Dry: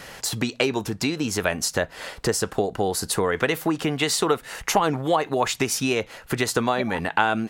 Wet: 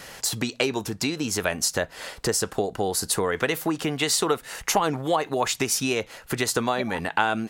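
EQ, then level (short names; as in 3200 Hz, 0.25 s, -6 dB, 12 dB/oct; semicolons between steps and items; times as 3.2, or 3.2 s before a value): tone controls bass -1 dB, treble +4 dB; -2.0 dB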